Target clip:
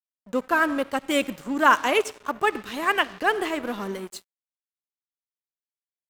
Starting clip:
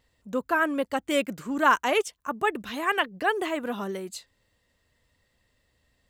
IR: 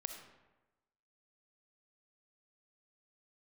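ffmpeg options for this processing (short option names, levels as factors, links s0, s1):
-filter_complex "[0:a]asplit=2[s0][s1];[1:a]atrim=start_sample=2205[s2];[s1][s2]afir=irnorm=-1:irlink=0,volume=0.75[s3];[s0][s3]amix=inputs=2:normalize=0,adynamicequalizer=threshold=0.0158:dfrequency=650:dqfactor=2.1:tfrequency=650:tqfactor=2.1:attack=5:release=100:ratio=0.375:range=2:mode=cutabove:tftype=bell,aeval=exprs='sgn(val(0))*max(abs(val(0))-0.0112,0)':c=same"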